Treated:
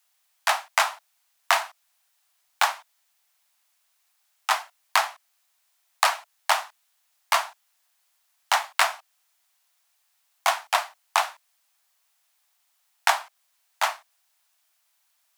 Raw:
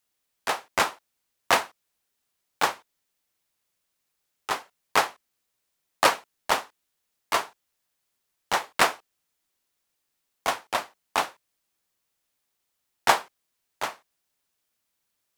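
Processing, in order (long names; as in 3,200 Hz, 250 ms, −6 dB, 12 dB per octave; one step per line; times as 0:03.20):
Butterworth high-pass 630 Hz 72 dB per octave
downward compressor 6 to 1, threshold −26 dBFS, peak gain reduction 12.5 dB
level +8.5 dB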